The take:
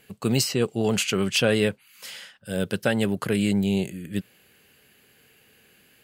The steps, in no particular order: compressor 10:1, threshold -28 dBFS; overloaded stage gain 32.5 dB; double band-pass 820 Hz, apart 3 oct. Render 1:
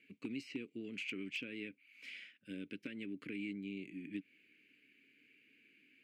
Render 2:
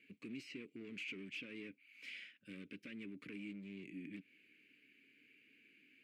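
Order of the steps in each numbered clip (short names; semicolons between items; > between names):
compressor > double band-pass > overloaded stage; compressor > overloaded stage > double band-pass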